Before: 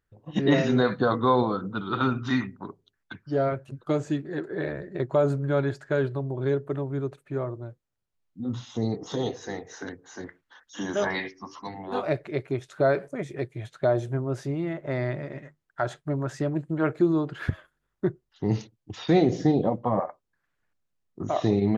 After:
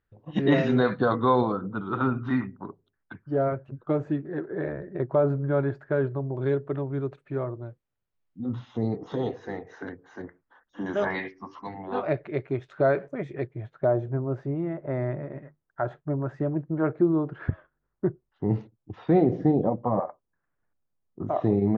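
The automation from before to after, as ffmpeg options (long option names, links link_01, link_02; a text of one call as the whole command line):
ffmpeg -i in.wav -af "asetnsamples=nb_out_samples=441:pad=0,asendcmd='1.52 lowpass f 1600;6.37 lowpass f 3200;8.46 lowpass f 2100;10.22 lowpass f 1200;10.86 lowpass f 2500;13.47 lowpass f 1300',lowpass=3400" out.wav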